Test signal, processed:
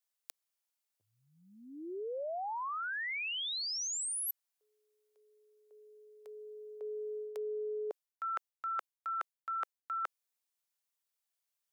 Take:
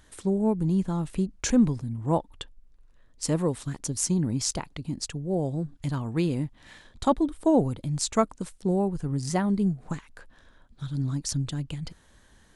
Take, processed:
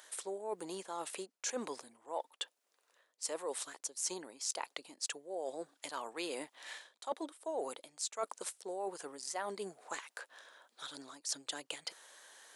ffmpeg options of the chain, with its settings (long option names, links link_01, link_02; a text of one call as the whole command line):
ffmpeg -i in.wav -af "highpass=frequency=480:width=0.5412,highpass=frequency=480:width=1.3066,highshelf=frequency=4300:gain=6,areverse,acompressor=threshold=-40dB:ratio=5,areverse,volume=2.5dB" out.wav